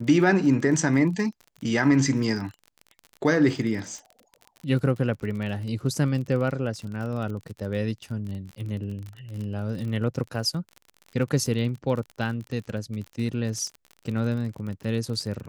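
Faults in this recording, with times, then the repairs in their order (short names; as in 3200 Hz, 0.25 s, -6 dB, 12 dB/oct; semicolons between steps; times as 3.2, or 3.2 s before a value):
crackle 42/s -33 dBFS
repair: de-click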